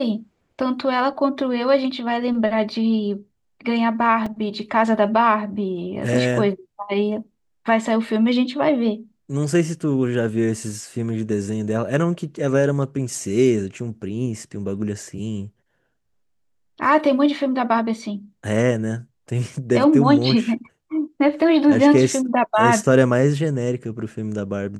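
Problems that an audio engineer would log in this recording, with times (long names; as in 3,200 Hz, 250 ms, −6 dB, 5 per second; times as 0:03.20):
0:04.26: drop-out 3.9 ms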